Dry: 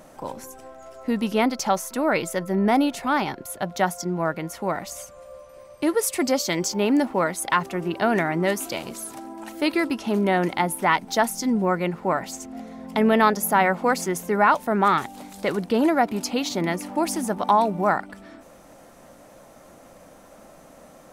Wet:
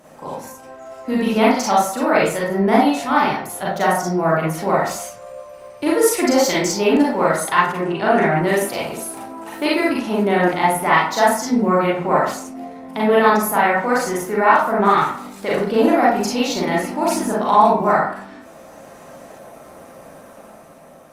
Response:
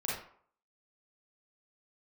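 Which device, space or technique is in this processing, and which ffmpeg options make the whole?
far-field microphone of a smart speaker: -filter_complex "[0:a]asplit=3[link_01][link_02][link_03];[link_01]afade=type=out:start_time=7.78:duration=0.02[link_04];[link_02]lowpass=frequency=10000:width=0.5412,lowpass=frequency=10000:width=1.3066,afade=type=in:start_time=7.78:duration=0.02,afade=type=out:start_time=8.31:duration=0.02[link_05];[link_03]afade=type=in:start_time=8.31:duration=0.02[link_06];[link_04][link_05][link_06]amix=inputs=3:normalize=0[link_07];[1:a]atrim=start_sample=2205[link_08];[link_07][link_08]afir=irnorm=-1:irlink=0,highpass=frequency=100:poles=1,dynaudnorm=framelen=120:gausssize=13:maxgain=5dB" -ar 48000 -c:a libopus -b:a 48k

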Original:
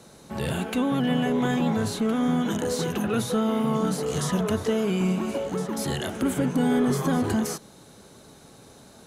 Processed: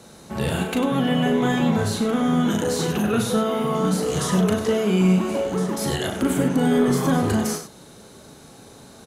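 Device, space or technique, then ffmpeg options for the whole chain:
slapback doubling: -filter_complex "[0:a]asplit=3[link_01][link_02][link_03];[link_02]adelay=38,volume=-6dB[link_04];[link_03]adelay=98,volume=-9.5dB[link_05];[link_01][link_04][link_05]amix=inputs=3:normalize=0,volume=3dB"

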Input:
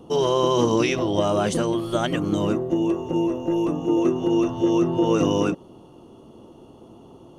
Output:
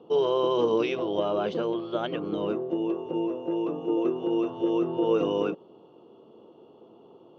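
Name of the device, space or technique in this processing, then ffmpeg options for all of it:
kitchen radio: -filter_complex "[0:a]highpass=210,equalizer=frequency=260:width_type=q:width=4:gain=-4,equalizer=frequency=450:width_type=q:width=4:gain=7,equalizer=frequency=1900:width_type=q:width=4:gain=-7,lowpass=frequency=3900:width=0.5412,lowpass=frequency=3900:width=1.3066,asettb=1/sr,asplit=3[link_01][link_02][link_03];[link_01]atrim=end=1.194[link_04];[link_02]atrim=start=1.19:end=2.49,asetpts=PTS-STARTPTS,afade=type=in:duration=0.004:curve=qsin,afade=type=out:start_time=1.296:duration=0.004:curve=qsin,lowpass=5700[link_05];[link_03]atrim=start=2.486[link_06];[link_04][link_05]acrossfade=duration=0.004:curve1=hsin:curve2=qsin[link_07];[link_07][link_06]acrossfade=duration=0.004:curve1=qsin:curve2=hsin,volume=-6dB"

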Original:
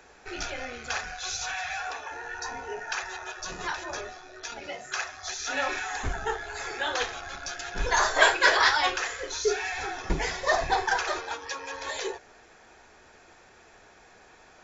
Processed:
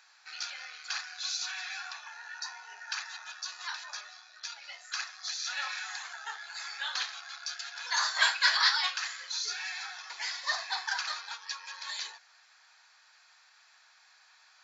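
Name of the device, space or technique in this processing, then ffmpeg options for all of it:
headphones lying on a table: -af "highpass=frequency=1000:width=0.5412,highpass=frequency=1000:width=1.3066,equalizer=frequency=4400:width_type=o:width=0.47:gain=11.5,volume=-6dB"

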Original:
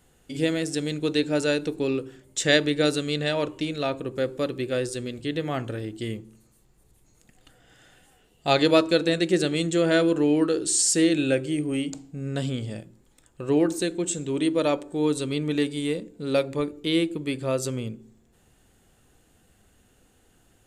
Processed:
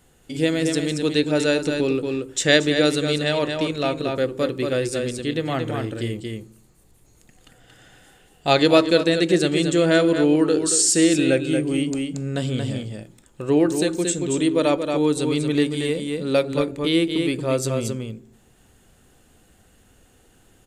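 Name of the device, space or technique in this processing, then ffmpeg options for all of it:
ducked delay: -filter_complex "[0:a]asplit=3[link_01][link_02][link_03];[link_02]adelay=229,volume=-3.5dB[link_04];[link_03]apad=whole_len=921544[link_05];[link_04][link_05]sidechaincompress=threshold=-24dB:ratio=8:attack=11:release=390[link_06];[link_01][link_06]amix=inputs=2:normalize=0,volume=3.5dB"

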